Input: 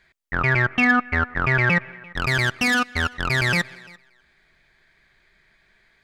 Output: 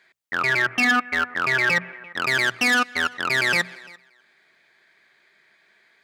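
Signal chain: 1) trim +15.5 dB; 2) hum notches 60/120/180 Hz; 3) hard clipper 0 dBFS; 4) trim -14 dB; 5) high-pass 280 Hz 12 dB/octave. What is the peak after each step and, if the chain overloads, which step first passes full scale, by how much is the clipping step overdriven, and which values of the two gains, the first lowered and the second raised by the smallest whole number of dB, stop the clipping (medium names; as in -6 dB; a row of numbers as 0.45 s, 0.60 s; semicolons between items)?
+8.5 dBFS, +8.5 dBFS, 0.0 dBFS, -14.0 dBFS, -10.5 dBFS; step 1, 8.5 dB; step 1 +6.5 dB, step 4 -5 dB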